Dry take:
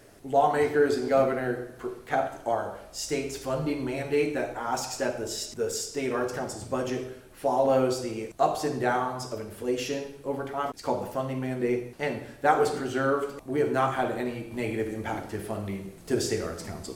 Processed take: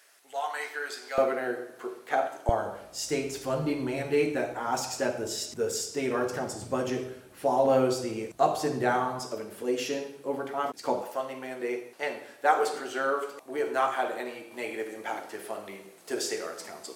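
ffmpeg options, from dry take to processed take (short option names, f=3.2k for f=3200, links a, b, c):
-af "asetnsamples=n=441:p=0,asendcmd='1.18 highpass f 350;2.49 highpass f 89;9.19 highpass f 210;11.01 highpass f 480',highpass=1.3k"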